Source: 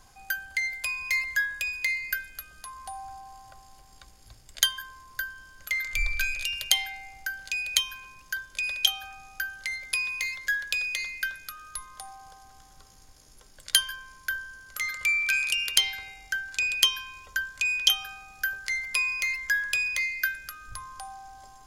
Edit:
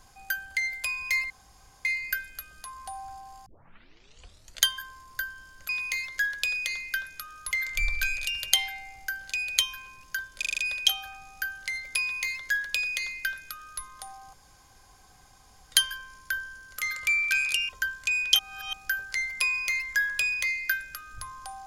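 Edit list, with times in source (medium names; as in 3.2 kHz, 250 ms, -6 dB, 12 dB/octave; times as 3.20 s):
1.30–1.85 s: room tone
3.46 s: tape start 1.17 s
8.56 s: stutter 0.04 s, 6 plays
9.98–11.80 s: copy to 5.69 s
12.31–13.70 s: room tone
15.67–17.23 s: delete
17.93–18.27 s: reverse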